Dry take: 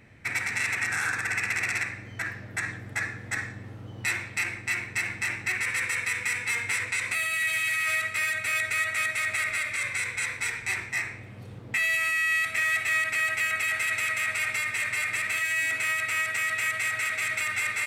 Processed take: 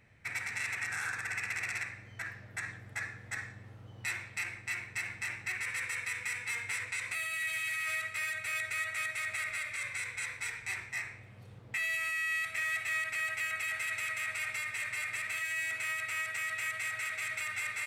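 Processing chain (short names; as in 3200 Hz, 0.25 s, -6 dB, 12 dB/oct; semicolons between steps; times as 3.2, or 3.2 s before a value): bell 280 Hz -6.5 dB 1.1 oct; gain -8 dB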